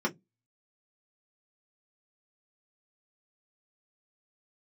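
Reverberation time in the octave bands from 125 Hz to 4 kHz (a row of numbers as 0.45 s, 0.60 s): 0.25 s, 0.25 s, 0.20 s, 0.10 s, 0.10 s, 0.10 s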